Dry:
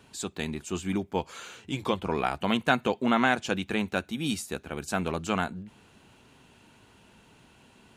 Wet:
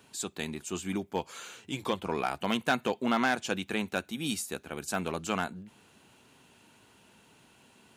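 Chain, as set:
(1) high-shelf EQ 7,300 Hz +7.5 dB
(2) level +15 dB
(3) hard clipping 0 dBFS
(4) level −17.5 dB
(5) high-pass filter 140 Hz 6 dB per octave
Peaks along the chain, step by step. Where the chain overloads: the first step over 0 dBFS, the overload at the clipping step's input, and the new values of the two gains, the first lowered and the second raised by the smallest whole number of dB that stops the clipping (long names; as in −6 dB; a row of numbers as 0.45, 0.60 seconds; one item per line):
−6.0, +9.0, 0.0, −17.5, −15.0 dBFS
step 2, 9.0 dB
step 2 +6 dB, step 4 −8.5 dB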